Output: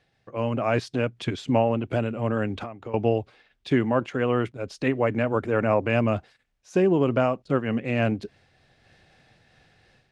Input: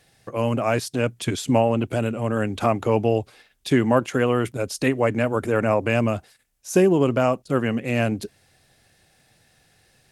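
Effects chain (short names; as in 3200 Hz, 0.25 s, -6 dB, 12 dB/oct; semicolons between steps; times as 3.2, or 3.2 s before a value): AGC gain up to 10 dB; LPF 3700 Hz 12 dB/oct; 2.54–2.94 compressor 12:1, threshold -26 dBFS, peak gain reduction 17 dB; noise-modulated level, depth 65%; gain -5 dB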